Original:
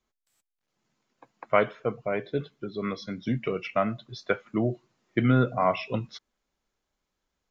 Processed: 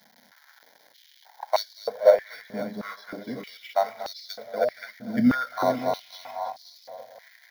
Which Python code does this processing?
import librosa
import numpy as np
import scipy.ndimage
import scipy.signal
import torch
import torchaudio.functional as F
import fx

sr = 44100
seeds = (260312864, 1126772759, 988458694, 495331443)

p1 = fx.reverse_delay_fb(x, sr, ms=263, feedback_pct=52, wet_db=-3.5)
p2 = fx.high_shelf(p1, sr, hz=3500.0, db=-9.0)
p3 = fx.dmg_crackle(p2, sr, seeds[0], per_s=580.0, level_db=-38.0)
p4 = fx.sample_hold(p3, sr, seeds[1], rate_hz=5000.0, jitter_pct=0)
p5 = p3 + F.gain(torch.from_numpy(p4), -6.0).numpy()
p6 = fx.fixed_phaser(p5, sr, hz=1800.0, stages=8)
p7 = p6 + fx.echo_feedback(p6, sr, ms=236, feedback_pct=49, wet_db=-14.0, dry=0)
p8 = fx.filter_held_highpass(p7, sr, hz=3.2, low_hz=230.0, high_hz=4500.0)
y = F.gain(torch.from_numpy(p8), -2.5).numpy()